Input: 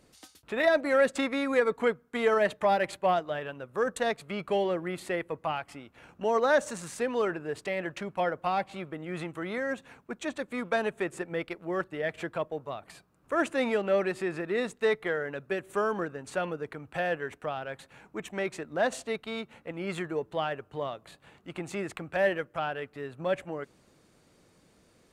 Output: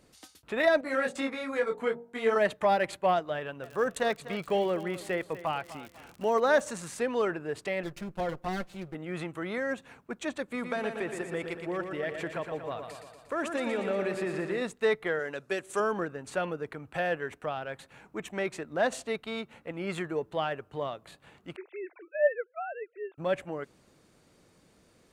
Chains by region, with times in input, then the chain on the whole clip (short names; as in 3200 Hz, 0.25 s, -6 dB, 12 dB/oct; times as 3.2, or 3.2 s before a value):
0.81–2.36 de-hum 47.01 Hz, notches 20 + detuned doubles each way 21 cents
3.62–6.59 feedback echo 0.248 s, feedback 34%, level -15 dB + crackle 82/s -38 dBFS
7.83–8.95 minimum comb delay 5.7 ms + bell 1700 Hz -7 dB 2.9 oct
10.43–14.62 compressor 4:1, threshold -28 dBFS + feedback echo 0.118 s, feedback 59%, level -6.5 dB
15.19–15.8 LPF 8200 Hz + tone controls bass -6 dB, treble +13 dB
21.56–23.18 sine-wave speech + brick-wall FIR high-pass 300 Hz + air absorption 250 m
whole clip: dry